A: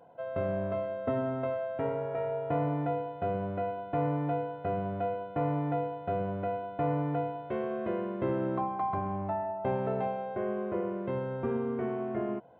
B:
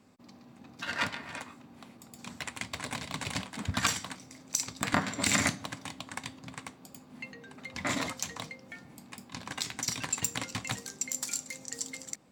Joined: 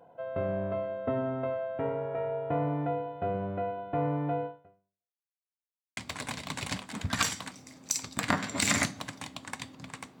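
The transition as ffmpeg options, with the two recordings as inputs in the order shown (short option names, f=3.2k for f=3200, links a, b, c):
-filter_complex "[0:a]apad=whole_dur=10.2,atrim=end=10.2,asplit=2[a][b];[a]atrim=end=5.26,asetpts=PTS-STARTPTS,afade=t=out:st=4.46:d=0.8:c=exp[c];[b]atrim=start=5.26:end=5.97,asetpts=PTS-STARTPTS,volume=0[d];[1:a]atrim=start=2.61:end=6.84,asetpts=PTS-STARTPTS,afade=t=in:d=0.004:c=hsin[e];[c][d][e]concat=n=3:v=0:a=1"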